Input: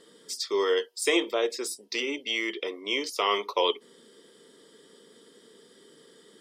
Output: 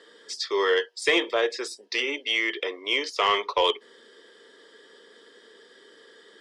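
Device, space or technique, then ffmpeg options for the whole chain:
intercom: -af "highpass=420,lowpass=5000,equalizer=frequency=1700:width_type=o:width=0.24:gain=9,asoftclip=type=tanh:threshold=-14.5dB,volume=4.5dB"

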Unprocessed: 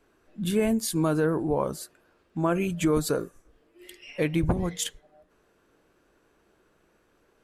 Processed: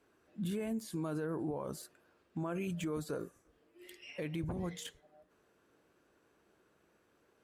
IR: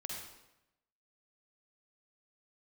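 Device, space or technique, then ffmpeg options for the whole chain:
podcast mastering chain: -af "highpass=71,deesser=0.8,acompressor=threshold=-27dB:ratio=2.5,alimiter=level_in=0.5dB:limit=-24dB:level=0:latency=1:release=32,volume=-0.5dB,volume=-5dB" -ar 48000 -c:a libmp3lame -b:a 112k

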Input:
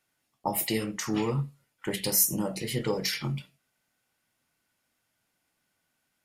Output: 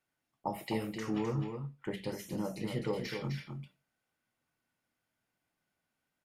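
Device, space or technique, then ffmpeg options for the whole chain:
behind a face mask: -filter_complex "[0:a]acrossover=split=4100[link_01][link_02];[link_02]acompressor=threshold=-39dB:ratio=4:attack=1:release=60[link_03];[link_01][link_03]amix=inputs=2:normalize=0,asettb=1/sr,asplit=3[link_04][link_05][link_06];[link_04]atrim=end=1.184[link_07];[link_05]atrim=start=1.18:end=2.19,asetpts=PTS-STARTPTS,afade=type=in:duration=0.004:curve=qsin,afade=type=out:start_time=1.006:duration=0.004:curve=qsin,highshelf=frequency=4300:gain=-6.5[link_08];[link_06]atrim=start=2.186[link_09];[link_07][link_08]acrossfade=duration=0.004:curve1=hsin:curve2=qsin[link_10];[link_10][link_09]acrossfade=duration=0.004:curve1=qsin:curve2=hsin,highshelf=frequency=2900:gain=-8,aecho=1:1:257:0.473,volume=-5.5dB"

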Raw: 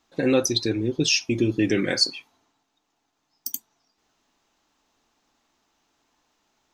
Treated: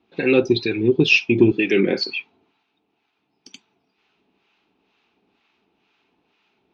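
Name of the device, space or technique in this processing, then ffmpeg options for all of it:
guitar amplifier with harmonic tremolo: -filter_complex "[0:a]asettb=1/sr,asplit=3[link_01][link_02][link_03];[link_01]atrim=end=1.514[link_04];[link_02]atrim=start=1.51:end=2.1,asetpts=PTS-STARTPTS,afade=type=in:duration=0.004:curve=qsin,afade=type=out:start_time=0.586:duration=0.004:curve=qsin,highpass=210[link_05];[link_03]atrim=start=2.096[link_06];[link_04][link_05]acrossfade=duration=0.004:curve1=hsin:curve2=qsin[link_07];[link_07][link_06]acrossfade=duration=0.004:curve1=qsin:curve2=hsin,acrossover=split=810[link_08][link_09];[link_08]aeval=exprs='val(0)*(1-0.7/2+0.7/2*cos(2*PI*2.1*n/s))':channel_layout=same[link_10];[link_09]aeval=exprs='val(0)*(1-0.7/2-0.7/2*cos(2*PI*2.1*n/s))':channel_layout=same[link_11];[link_10][link_11]amix=inputs=2:normalize=0,asoftclip=type=tanh:threshold=-14dB,highpass=75,equalizer=frequency=190:width_type=q:width=4:gain=7,equalizer=frequency=400:width_type=q:width=4:gain=9,equalizer=frequency=580:width_type=q:width=4:gain=-5,equalizer=frequency=1100:width_type=q:width=4:gain=-4,equalizer=frequency=1800:width_type=q:width=4:gain=-4,equalizer=frequency=2500:width_type=q:width=4:gain=9,lowpass=frequency=3900:width=0.5412,lowpass=frequency=3900:width=1.3066,volume=6.5dB"

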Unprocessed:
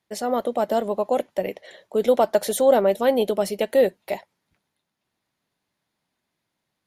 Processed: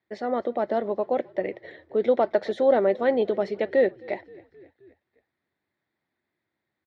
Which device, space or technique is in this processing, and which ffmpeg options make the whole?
frequency-shifting delay pedal into a guitar cabinet: -filter_complex "[0:a]asplit=5[link_01][link_02][link_03][link_04][link_05];[link_02]adelay=263,afreqshift=-36,volume=-24dB[link_06];[link_03]adelay=526,afreqshift=-72,volume=-28.4dB[link_07];[link_04]adelay=789,afreqshift=-108,volume=-32.9dB[link_08];[link_05]adelay=1052,afreqshift=-144,volume=-37.3dB[link_09];[link_01][link_06][link_07][link_08][link_09]amix=inputs=5:normalize=0,highpass=75,equalizer=frequency=82:width_type=q:width=4:gain=7,equalizer=frequency=170:width_type=q:width=4:gain=-4,equalizer=frequency=350:width_type=q:width=4:gain=7,equalizer=frequency=1000:width_type=q:width=4:gain=-3,equalizer=frequency=1900:width_type=q:width=4:gain=7,equalizer=frequency=2900:width_type=q:width=4:gain=-9,lowpass=frequency=3800:width=0.5412,lowpass=frequency=3800:width=1.3066,volume=-3.5dB"

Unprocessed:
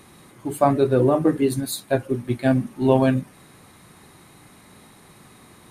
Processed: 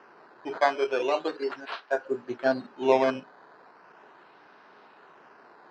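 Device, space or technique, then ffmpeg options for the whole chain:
circuit-bent sampling toy: -filter_complex "[0:a]acrusher=samples=11:mix=1:aa=0.000001:lfo=1:lforange=11:lforate=0.38,highpass=410,equalizer=frequency=420:width_type=q:width=4:gain=6,equalizer=frequency=670:width_type=q:width=4:gain=4,equalizer=frequency=950:width_type=q:width=4:gain=6,equalizer=frequency=1500:width_type=q:width=4:gain=8,equalizer=frequency=2200:width_type=q:width=4:gain=-6,equalizer=frequency=3500:width_type=q:width=4:gain=-9,lowpass=frequency=4200:width=0.5412,lowpass=frequency=4200:width=1.3066,asettb=1/sr,asplit=3[link_01][link_02][link_03];[link_01]atrim=end=0.604[link_04];[link_02]atrim=start=0.6:end=2.05,asetpts=PTS-STARTPTS,afade=type=in:duration=0.004:curve=qsin,afade=type=out:start_time=1.446:duration=0.004:curve=qsin,highpass=frequency=680:poles=1[link_05];[link_03]atrim=start=2.046[link_06];[link_04][link_05]acrossfade=duration=0.004:curve1=hsin:curve2=qsin[link_07];[link_07][link_06]acrossfade=duration=0.004:curve1=qsin:curve2=hsin,volume=-4.5dB"

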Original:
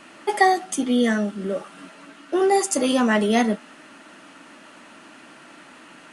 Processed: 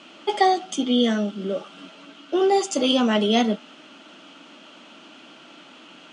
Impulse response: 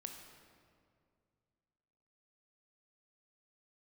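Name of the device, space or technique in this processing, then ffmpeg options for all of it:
car door speaker: -af "highpass=110,equalizer=frequency=120:width_type=q:width=4:gain=-7,equalizer=frequency=1000:width_type=q:width=4:gain=-4,equalizer=frequency=1800:width_type=q:width=4:gain=-10,equalizer=frequency=3200:width_type=q:width=4:gain=9,lowpass=frequency=6700:width=0.5412,lowpass=frequency=6700:width=1.3066"

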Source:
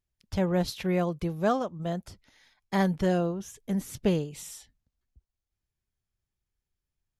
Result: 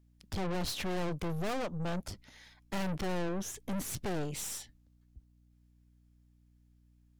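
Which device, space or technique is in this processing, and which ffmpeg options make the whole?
valve amplifier with mains hum: -af "aeval=exprs='(tanh(112*val(0)+0.6)-tanh(0.6))/112':channel_layout=same,aeval=exprs='val(0)+0.000282*(sin(2*PI*60*n/s)+sin(2*PI*2*60*n/s)/2+sin(2*PI*3*60*n/s)/3+sin(2*PI*4*60*n/s)/4+sin(2*PI*5*60*n/s)/5)':channel_layout=same,volume=7.5dB"

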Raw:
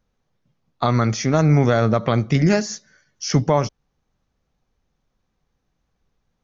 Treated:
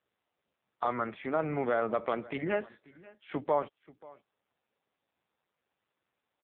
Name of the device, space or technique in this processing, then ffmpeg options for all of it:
satellite phone: -af "highpass=380,lowpass=3300,aecho=1:1:535:0.0841,volume=-8dB" -ar 8000 -c:a libopencore_amrnb -b:a 5900

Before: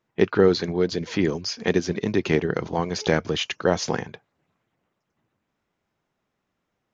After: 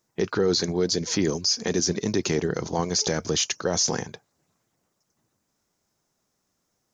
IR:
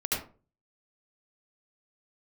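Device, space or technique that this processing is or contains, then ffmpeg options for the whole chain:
over-bright horn tweeter: -af "highshelf=frequency=4100:width_type=q:width=1.5:gain=12.5,alimiter=limit=-13.5dB:level=0:latency=1:release=13"

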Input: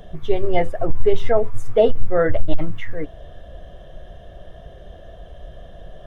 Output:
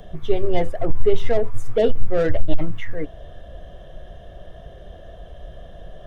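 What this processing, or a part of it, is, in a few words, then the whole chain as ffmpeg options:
one-band saturation: -filter_complex "[0:a]acrossover=split=540|2500[link_01][link_02][link_03];[link_02]asoftclip=type=tanh:threshold=-27dB[link_04];[link_01][link_04][link_03]amix=inputs=3:normalize=0"

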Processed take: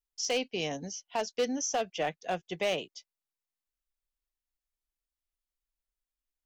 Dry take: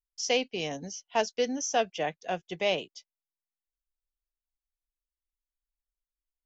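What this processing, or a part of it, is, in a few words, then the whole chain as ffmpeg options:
limiter into clipper: -af "alimiter=limit=-18dB:level=0:latency=1:release=154,asoftclip=type=hard:threshold=-23dB"

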